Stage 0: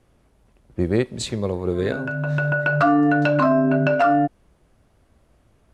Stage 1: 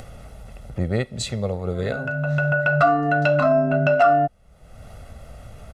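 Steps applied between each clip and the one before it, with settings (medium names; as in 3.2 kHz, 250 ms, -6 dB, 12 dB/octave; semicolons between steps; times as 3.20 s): comb 1.5 ms, depth 69%; upward compressor, threshold -22 dBFS; trim -2 dB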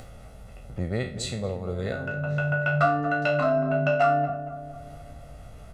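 spectral sustain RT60 0.39 s; filtered feedback delay 232 ms, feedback 62%, low-pass 1.1 kHz, level -10.5 dB; trim -6 dB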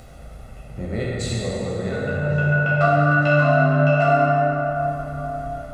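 plate-style reverb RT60 4.3 s, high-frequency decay 0.45×, DRR -6 dB; trim -1.5 dB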